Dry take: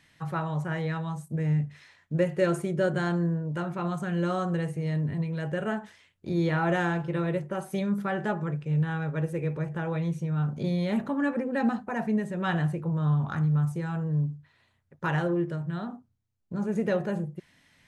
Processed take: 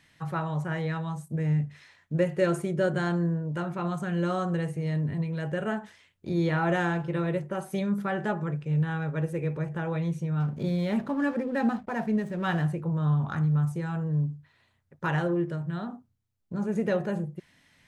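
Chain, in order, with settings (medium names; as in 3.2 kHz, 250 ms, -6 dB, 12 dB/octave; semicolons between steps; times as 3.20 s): 10.40–12.65 s: hysteresis with a dead band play -46 dBFS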